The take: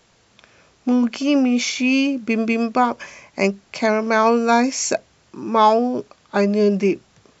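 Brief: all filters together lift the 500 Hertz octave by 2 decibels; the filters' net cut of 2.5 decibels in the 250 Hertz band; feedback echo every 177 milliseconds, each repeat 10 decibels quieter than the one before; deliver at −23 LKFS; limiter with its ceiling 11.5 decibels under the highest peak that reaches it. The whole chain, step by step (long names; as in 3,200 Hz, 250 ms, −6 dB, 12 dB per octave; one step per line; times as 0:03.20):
parametric band 250 Hz −3.5 dB
parametric band 500 Hz +3.5 dB
brickwall limiter −13.5 dBFS
repeating echo 177 ms, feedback 32%, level −10 dB
level +0.5 dB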